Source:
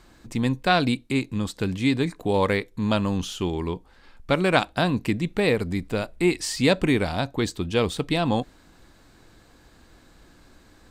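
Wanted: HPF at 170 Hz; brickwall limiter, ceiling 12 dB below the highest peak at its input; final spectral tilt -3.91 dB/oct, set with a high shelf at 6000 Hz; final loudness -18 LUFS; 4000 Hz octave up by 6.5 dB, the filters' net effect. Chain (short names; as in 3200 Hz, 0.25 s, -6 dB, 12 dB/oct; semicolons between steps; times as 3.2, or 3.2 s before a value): HPF 170 Hz; bell 4000 Hz +6 dB; high shelf 6000 Hz +5 dB; gain +8 dB; limiter -3.5 dBFS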